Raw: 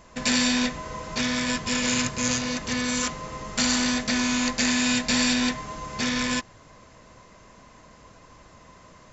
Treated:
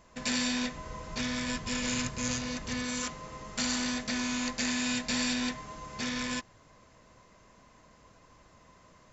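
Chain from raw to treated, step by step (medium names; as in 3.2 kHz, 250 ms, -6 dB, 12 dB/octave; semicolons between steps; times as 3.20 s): 0.77–2.83 s: bass shelf 94 Hz +9 dB; trim -8 dB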